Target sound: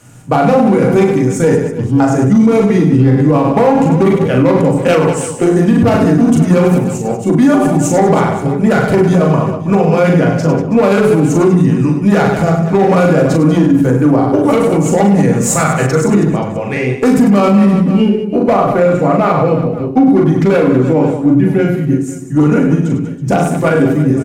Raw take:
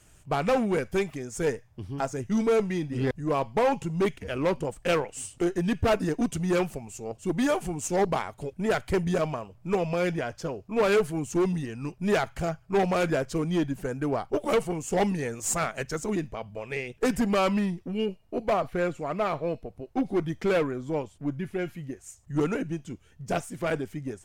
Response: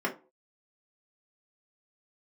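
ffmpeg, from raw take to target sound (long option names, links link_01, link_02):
-filter_complex "[0:a]aecho=1:1:40|100|190|325|527.5:0.631|0.398|0.251|0.158|0.1,asplit=2[link_01][link_02];[1:a]atrim=start_sample=2205,asetrate=30870,aresample=44100,lowshelf=frequency=240:gain=9.5[link_03];[link_02][link_03]afir=irnorm=-1:irlink=0,volume=-9.5dB[link_04];[link_01][link_04]amix=inputs=2:normalize=0,alimiter=level_in=10.5dB:limit=-1dB:release=50:level=0:latency=1,volume=-1dB"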